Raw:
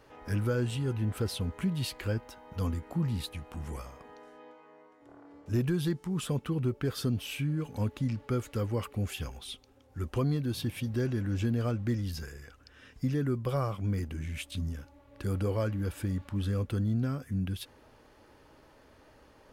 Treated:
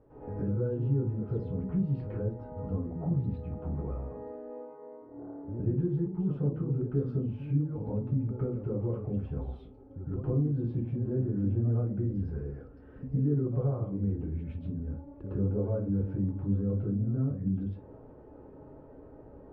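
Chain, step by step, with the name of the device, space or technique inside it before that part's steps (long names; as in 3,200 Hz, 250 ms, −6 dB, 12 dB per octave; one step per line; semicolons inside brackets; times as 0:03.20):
television next door (downward compressor 4 to 1, threshold −39 dBFS, peak gain reduction 12 dB; low-pass filter 510 Hz 12 dB per octave; convolution reverb RT60 0.35 s, pre-delay 102 ms, DRR −10.5 dB)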